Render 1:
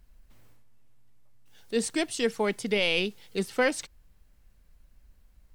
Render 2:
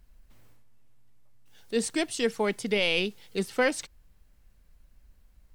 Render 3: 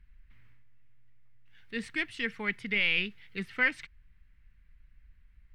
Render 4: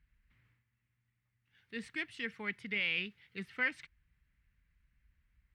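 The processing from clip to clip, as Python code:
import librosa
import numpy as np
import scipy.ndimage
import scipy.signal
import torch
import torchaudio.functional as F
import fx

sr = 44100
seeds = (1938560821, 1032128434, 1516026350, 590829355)

y1 = x
y2 = fx.curve_eq(y1, sr, hz=(120.0, 650.0, 2000.0, 6800.0), db=(0, -18, 6, -21))
y3 = scipy.signal.sosfilt(scipy.signal.butter(2, 59.0, 'highpass', fs=sr, output='sos'), y2)
y3 = y3 * librosa.db_to_amplitude(-6.5)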